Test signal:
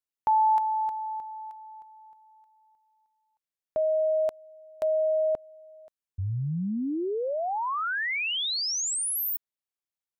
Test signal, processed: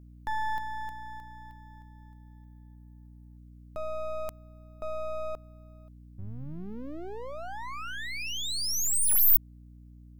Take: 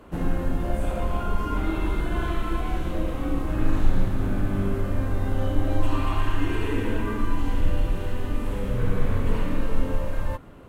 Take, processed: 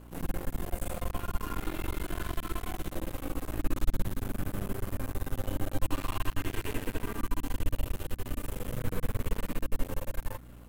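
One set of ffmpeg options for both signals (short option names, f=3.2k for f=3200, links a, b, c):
-af "aemphasis=mode=production:type=75fm,aeval=exprs='max(val(0),0)':c=same,aeval=exprs='val(0)+0.00631*(sin(2*PI*60*n/s)+sin(2*PI*2*60*n/s)/2+sin(2*PI*3*60*n/s)/3+sin(2*PI*4*60*n/s)/4+sin(2*PI*5*60*n/s)/5)':c=same,volume=-5dB"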